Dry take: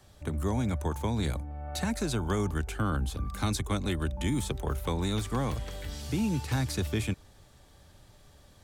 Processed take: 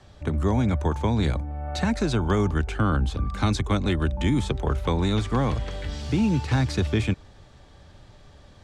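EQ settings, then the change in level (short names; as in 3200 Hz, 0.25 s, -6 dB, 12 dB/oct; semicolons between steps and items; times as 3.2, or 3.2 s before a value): air absorption 100 m; +7.0 dB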